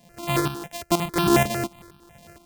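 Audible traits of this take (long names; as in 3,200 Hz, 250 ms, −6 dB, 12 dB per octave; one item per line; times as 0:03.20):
a buzz of ramps at a fixed pitch in blocks of 128 samples
tremolo saw up 2.1 Hz, depth 70%
notches that jump at a steady rate 11 Hz 360–2,000 Hz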